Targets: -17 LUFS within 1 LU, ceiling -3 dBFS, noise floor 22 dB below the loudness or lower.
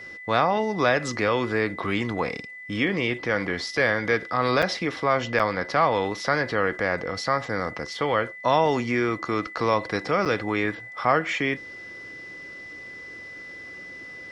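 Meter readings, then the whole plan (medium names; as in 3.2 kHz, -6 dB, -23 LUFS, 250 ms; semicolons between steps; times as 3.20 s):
dropouts 3; longest dropout 6.4 ms; steady tone 2 kHz; tone level -38 dBFS; loudness -24.5 LUFS; peak level -7.0 dBFS; loudness target -17.0 LUFS
-> interpolate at 4.62/5.39/10.25 s, 6.4 ms; band-stop 2 kHz, Q 30; trim +7.5 dB; peak limiter -3 dBFS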